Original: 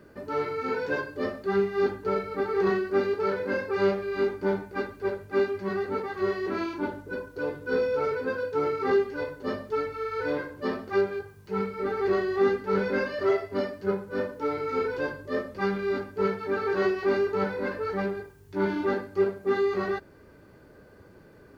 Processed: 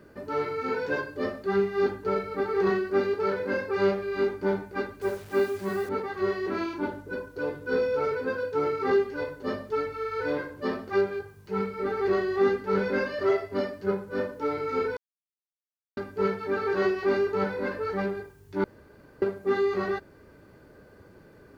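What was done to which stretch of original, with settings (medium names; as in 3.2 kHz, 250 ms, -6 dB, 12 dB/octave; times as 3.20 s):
5.01–5.89 s: word length cut 8-bit, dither none
14.97–15.97 s: mute
18.64–19.22 s: room tone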